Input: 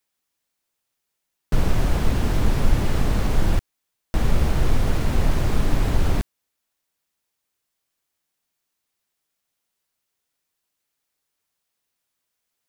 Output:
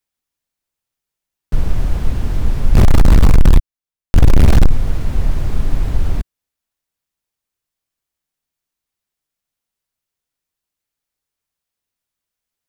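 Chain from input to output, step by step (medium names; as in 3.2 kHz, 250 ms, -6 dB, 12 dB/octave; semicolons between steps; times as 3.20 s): bass shelf 120 Hz +10 dB; 2.75–4.71 s: waveshaping leveller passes 5; trim -4.5 dB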